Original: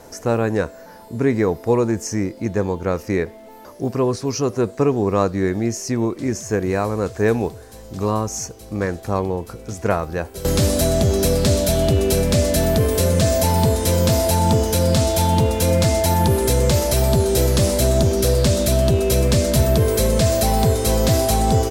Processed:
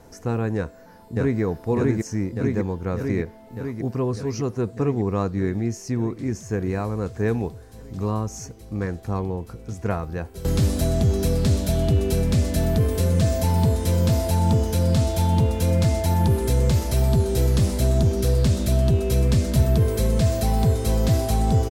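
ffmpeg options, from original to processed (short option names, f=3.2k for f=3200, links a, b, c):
-filter_complex "[0:a]asplit=2[a][b];[b]afade=t=in:st=0.56:d=0.01,afade=t=out:st=1.41:d=0.01,aecho=0:1:600|1200|1800|2400|3000|3600|4200|4800|5400|6000|6600|7200:0.944061|0.708046|0.531034|0.398276|0.298707|0.22403|0.168023|0.126017|0.0945127|0.0708845|0.0531634|0.0398725[c];[a][c]amix=inputs=2:normalize=0,bass=f=250:g=7,treble=f=4k:g=-3,bandreject=f=580:w=12,volume=-7.5dB"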